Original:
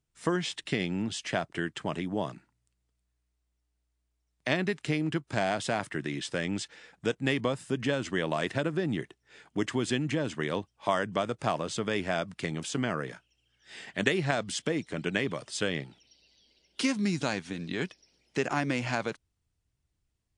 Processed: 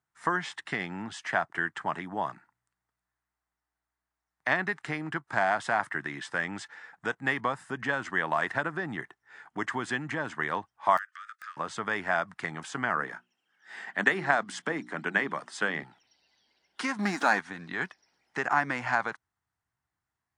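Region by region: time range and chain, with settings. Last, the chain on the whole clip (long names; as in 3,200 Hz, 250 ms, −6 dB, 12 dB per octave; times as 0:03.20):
0:10.97–0:11.57: downward compressor 8 to 1, threshold −33 dBFS + Chebyshev high-pass with heavy ripple 1,200 Hz, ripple 3 dB + wrap-around overflow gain 32 dB
0:12.96–0:15.83: high-pass filter 170 Hz 24 dB per octave + low-shelf EQ 360 Hz +6 dB + mains-hum notches 60/120/180/240/300/360 Hz
0:16.99–0:17.41: leveller curve on the samples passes 2 + linear-phase brick-wall high-pass 180 Hz
whole clip: high-pass filter 100 Hz; flat-topped bell 1,200 Hz +14 dB; level −6.5 dB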